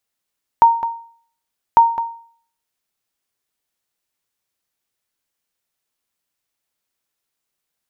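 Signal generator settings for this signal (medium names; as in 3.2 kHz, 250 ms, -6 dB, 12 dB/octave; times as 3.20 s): sonar ping 925 Hz, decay 0.51 s, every 1.15 s, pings 2, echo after 0.21 s, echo -12.5 dB -2.5 dBFS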